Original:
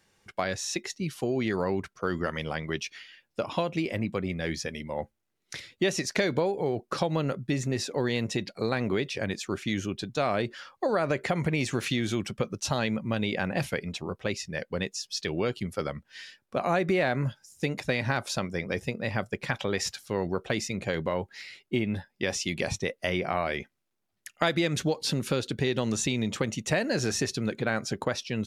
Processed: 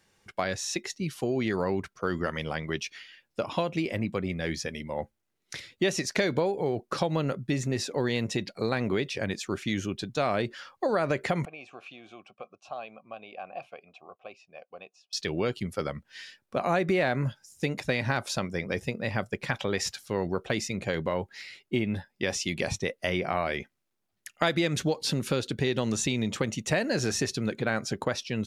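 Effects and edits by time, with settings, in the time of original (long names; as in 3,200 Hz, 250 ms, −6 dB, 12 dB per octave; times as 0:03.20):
0:11.45–0:15.13: formant filter a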